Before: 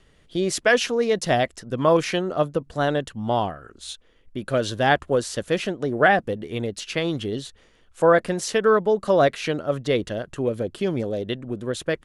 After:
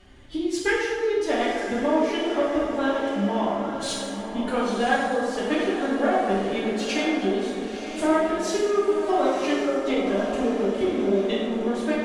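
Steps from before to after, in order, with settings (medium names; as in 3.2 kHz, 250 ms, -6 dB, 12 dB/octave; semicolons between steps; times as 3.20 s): treble shelf 7.8 kHz -7 dB; transient shaper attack +4 dB, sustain -5 dB; compression 3:1, threshold -34 dBFS, peak gain reduction 18 dB; formant-preserving pitch shift +11 st; echo that smears into a reverb 1003 ms, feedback 54%, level -9 dB; plate-style reverb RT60 1.7 s, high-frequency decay 0.55×, DRR -6.5 dB; trim +3 dB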